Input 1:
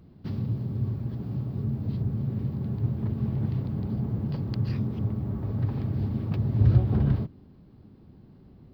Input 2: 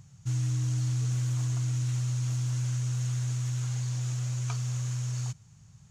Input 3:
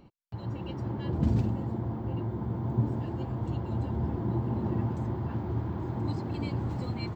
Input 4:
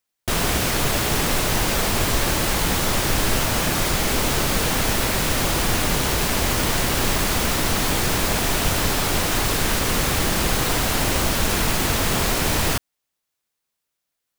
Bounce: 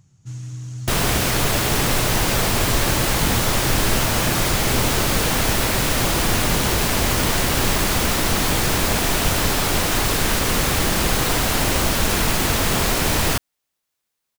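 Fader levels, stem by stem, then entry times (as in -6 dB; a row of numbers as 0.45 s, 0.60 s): -18.0 dB, -3.0 dB, -3.0 dB, +1.5 dB; 0.00 s, 0.00 s, 2.00 s, 0.60 s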